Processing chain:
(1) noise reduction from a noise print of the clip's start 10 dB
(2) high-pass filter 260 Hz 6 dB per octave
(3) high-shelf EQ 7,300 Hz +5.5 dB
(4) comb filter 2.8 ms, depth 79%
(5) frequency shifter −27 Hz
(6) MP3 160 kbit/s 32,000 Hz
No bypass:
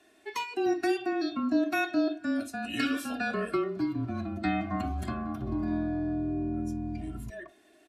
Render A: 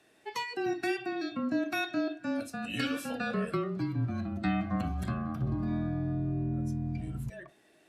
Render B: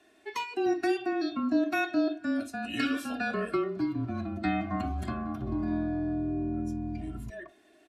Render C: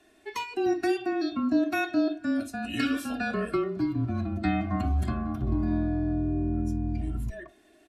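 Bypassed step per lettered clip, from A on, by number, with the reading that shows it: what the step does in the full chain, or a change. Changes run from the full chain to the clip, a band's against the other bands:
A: 4, 125 Hz band +7.5 dB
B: 3, 8 kHz band −3.0 dB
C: 2, 125 Hz band +7.0 dB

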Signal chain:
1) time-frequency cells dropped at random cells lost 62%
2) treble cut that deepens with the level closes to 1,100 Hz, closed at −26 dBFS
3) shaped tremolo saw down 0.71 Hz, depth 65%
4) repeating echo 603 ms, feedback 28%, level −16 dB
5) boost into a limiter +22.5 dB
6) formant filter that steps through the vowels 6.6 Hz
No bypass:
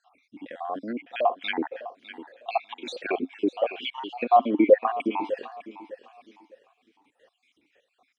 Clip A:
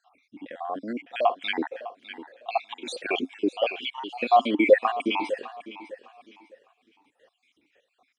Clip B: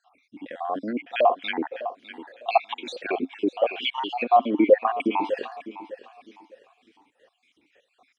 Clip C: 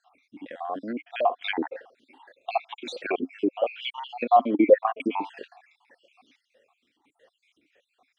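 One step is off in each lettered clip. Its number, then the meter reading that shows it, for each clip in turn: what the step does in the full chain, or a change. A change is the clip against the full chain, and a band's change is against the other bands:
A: 2, 2 kHz band +4.5 dB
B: 3, change in momentary loudness spread −2 LU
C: 4, change in momentary loudness spread −5 LU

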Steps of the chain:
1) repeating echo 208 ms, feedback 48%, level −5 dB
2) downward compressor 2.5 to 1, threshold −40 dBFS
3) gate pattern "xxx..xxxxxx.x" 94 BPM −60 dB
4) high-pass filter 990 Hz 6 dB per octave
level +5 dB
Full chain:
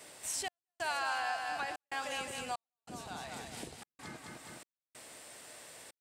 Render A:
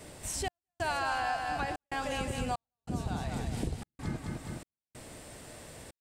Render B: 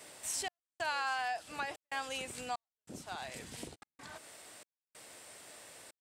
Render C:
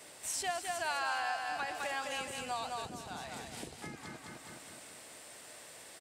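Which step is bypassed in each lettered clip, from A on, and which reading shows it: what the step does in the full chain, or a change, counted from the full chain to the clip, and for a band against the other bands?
4, 125 Hz band +16.0 dB
1, change in momentary loudness spread +2 LU
3, 500 Hz band +1.5 dB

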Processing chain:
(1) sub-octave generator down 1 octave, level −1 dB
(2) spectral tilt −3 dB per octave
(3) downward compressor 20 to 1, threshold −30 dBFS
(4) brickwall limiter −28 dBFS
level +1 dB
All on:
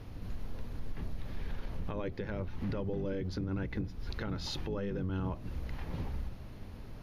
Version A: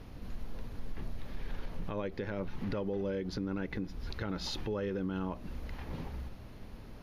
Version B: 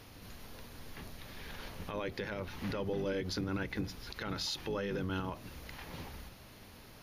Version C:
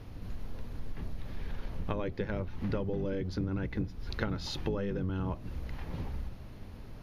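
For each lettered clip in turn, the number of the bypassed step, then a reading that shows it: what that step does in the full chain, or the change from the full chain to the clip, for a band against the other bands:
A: 1, 125 Hz band −4.5 dB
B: 2, 125 Hz band −8.0 dB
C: 4, change in crest factor +8.5 dB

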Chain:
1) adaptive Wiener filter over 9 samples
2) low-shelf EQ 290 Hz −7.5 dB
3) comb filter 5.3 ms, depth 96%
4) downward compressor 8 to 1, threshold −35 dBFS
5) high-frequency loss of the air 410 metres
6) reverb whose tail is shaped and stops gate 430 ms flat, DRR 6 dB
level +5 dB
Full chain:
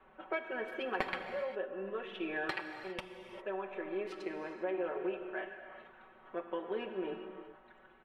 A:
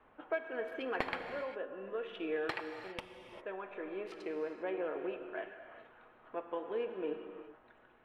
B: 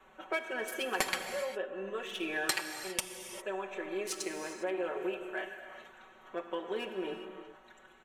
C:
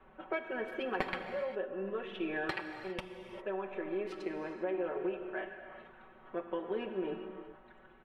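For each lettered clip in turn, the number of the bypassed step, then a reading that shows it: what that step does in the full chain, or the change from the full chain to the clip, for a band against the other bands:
3, 500 Hz band +2.0 dB
5, 4 kHz band +9.0 dB
2, 125 Hz band +4.5 dB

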